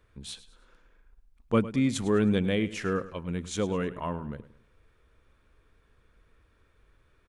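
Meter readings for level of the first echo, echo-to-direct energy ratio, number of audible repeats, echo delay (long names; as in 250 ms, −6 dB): −16.0 dB, −15.5 dB, 3, 104 ms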